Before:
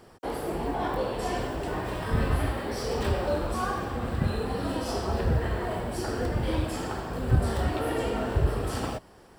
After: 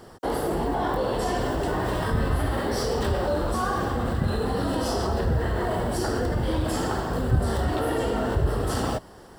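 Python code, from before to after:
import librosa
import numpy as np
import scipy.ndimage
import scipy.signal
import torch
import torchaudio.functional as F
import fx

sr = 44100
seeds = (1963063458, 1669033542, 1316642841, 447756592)

p1 = fx.over_compress(x, sr, threshold_db=-32.0, ratio=-1.0)
p2 = x + (p1 * librosa.db_to_amplitude(-2.5))
y = fx.peak_eq(p2, sr, hz=2400.0, db=-10.5, octaves=0.24)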